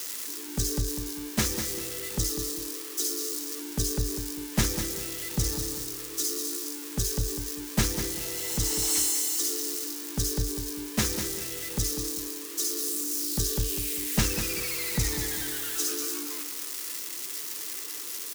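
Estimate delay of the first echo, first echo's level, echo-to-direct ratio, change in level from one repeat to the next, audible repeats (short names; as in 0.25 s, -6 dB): 0.198 s, -9.0 dB, -8.5 dB, -10.5 dB, 2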